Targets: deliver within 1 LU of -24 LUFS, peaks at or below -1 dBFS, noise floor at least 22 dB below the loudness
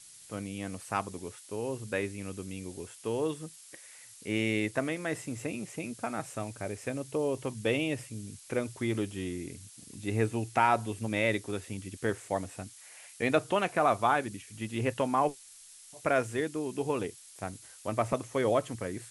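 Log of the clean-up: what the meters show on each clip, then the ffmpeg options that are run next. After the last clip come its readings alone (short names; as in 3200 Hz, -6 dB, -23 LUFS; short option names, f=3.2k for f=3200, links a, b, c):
noise floor -53 dBFS; noise floor target -55 dBFS; loudness -32.5 LUFS; peak -11.0 dBFS; loudness target -24.0 LUFS
-> -af "afftdn=nr=6:nf=-53"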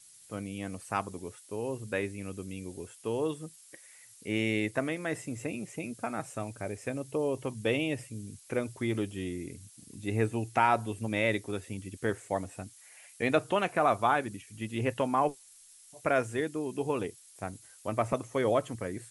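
noise floor -56 dBFS; loudness -32.5 LUFS; peak -11.0 dBFS; loudness target -24.0 LUFS
-> -af "volume=8.5dB"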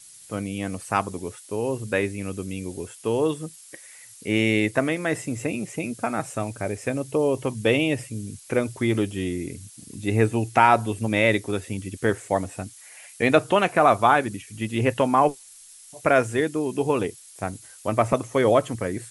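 loudness -24.0 LUFS; peak -2.5 dBFS; noise floor -47 dBFS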